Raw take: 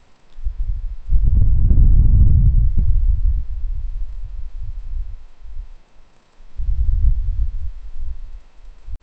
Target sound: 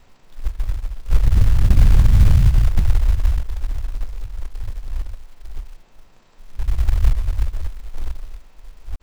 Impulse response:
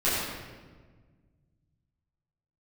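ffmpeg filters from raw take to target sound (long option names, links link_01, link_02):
-af "acrusher=bits=6:mode=log:mix=0:aa=0.000001"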